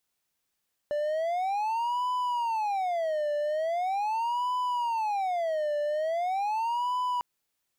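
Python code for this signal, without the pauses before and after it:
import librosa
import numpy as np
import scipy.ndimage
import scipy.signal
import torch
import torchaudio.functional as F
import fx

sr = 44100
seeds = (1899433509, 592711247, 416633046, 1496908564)

y = fx.siren(sr, length_s=6.3, kind='wail', low_hz=589.0, high_hz=998.0, per_s=0.41, wave='triangle', level_db=-24.0)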